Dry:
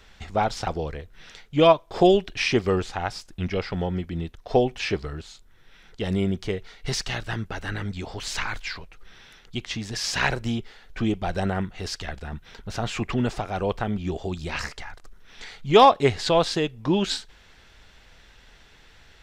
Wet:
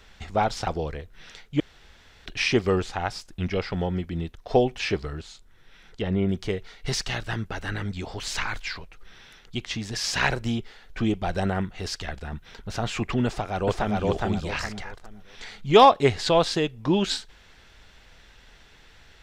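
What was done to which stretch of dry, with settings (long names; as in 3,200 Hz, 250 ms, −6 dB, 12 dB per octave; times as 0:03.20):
0:01.60–0:02.26: fill with room tone
0:05.20–0:06.29: treble cut that deepens with the level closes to 2,200 Hz, closed at −23.5 dBFS
0:13.26–0:13.99: delay throw 410 ms, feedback 30%, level −0.5 dB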